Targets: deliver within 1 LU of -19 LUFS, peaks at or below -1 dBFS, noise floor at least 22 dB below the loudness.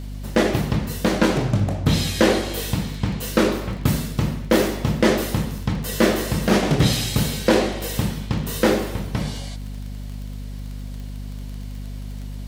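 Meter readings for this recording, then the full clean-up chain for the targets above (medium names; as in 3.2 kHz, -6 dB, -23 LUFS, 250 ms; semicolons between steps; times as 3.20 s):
tick rate 20 per s; hum 50 Hz; highest harmonic 250 Hz; hum level -29 dBFS; loudness -21.5 LUFS; peak level -4.0 dBFS; loudness target -19.0 LUFS
-> de-click; hum notches 50/100/150/200/250 Hz; trim +2.5 dB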